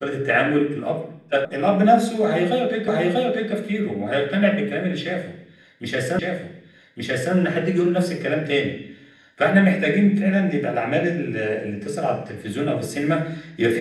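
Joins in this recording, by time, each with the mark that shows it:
0:01.45: cut off before it has died away
0:02.88: the same again, the last 0.64 s
0:06.19: the same again, the last 1.16 s

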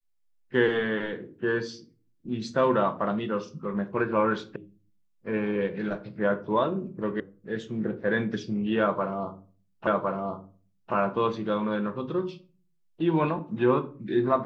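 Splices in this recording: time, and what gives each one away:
0:04.56: cut off before it has died away
0:07.20: cut off before it has died away
0:09.87: the same again, the last 1.06 s

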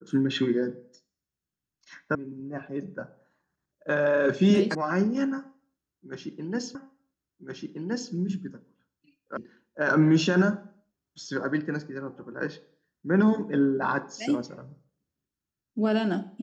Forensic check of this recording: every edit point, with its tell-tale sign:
0:02.15: cut off before it has died away
0:04.75: cut off before it has died away
0:06.75: the same again, the last 1.37 s
0:09.37: cut off before it has died away

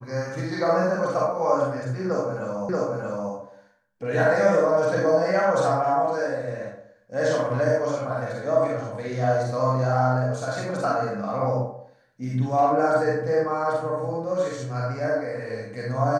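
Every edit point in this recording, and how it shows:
0:02.69: the same again, the last 0.63 s

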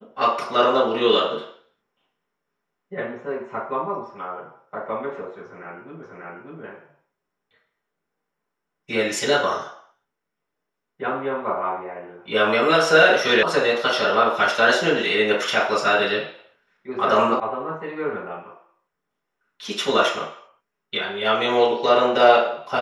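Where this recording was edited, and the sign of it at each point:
0:06.03: the same again, the last 0.59 s
0:13.43: cut off before it has died away
0:17.40: cut off before it has died away

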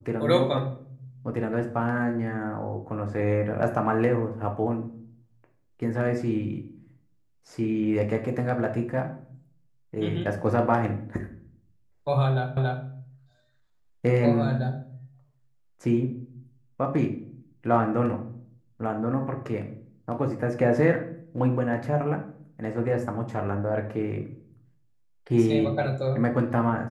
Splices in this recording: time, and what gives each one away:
0:12.57: the same again, the last 0.28 s

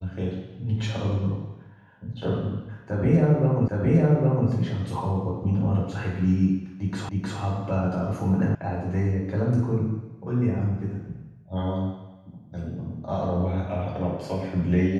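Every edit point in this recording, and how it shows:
0:03.68: the same again, the last 0.81 s
0:07.09: the same again, the last 0.31 s
0:08.55: cut off before it has died away

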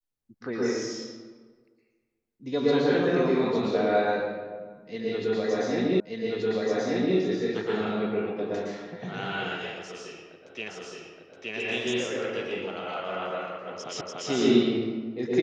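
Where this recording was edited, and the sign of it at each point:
0:06.00: the same again, the last 1.18 s
0:10.68: the same again, the last 0.87 s
0:14.01: the same again, the last 0.29 s

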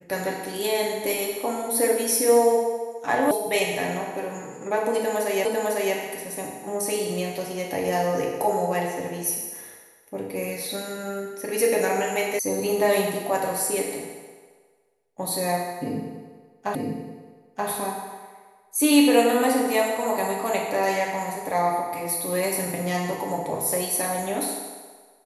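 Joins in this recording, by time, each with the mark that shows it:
0:03.31: cut off before it has died away
0:05.45: the same again, the last 0.5 s
0:12.39: cut off before it has died away
0:16.75: the same again, the last 0.93 s

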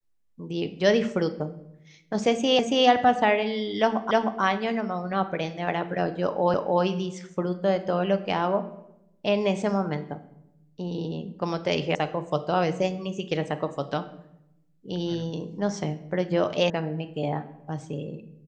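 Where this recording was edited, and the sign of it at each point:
0:02.59: the same again, the last 0.28 s
0:04.11: the same again, the last 0.31 s
0:06.54: the same again, the last 0.3 s
0:11.95: cut off before it has died away
0:16.70: cut off before it has died away

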